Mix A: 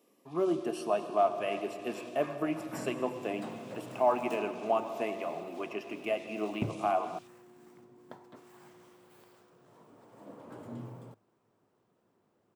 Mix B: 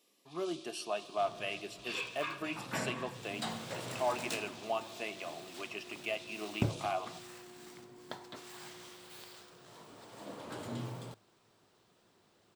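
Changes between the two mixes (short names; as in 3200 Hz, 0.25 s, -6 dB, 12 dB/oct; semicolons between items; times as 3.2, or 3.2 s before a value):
speech: send -9.0 dB; second sound +9.5 dB; master: add ten-band EQ 125 Hz -5 dB, 250 Hz -7 dB, 500 Hz -5 dB, 1000 Hz -4 dB, 4000 Hz +9 dB, 8000 Hz +3 dB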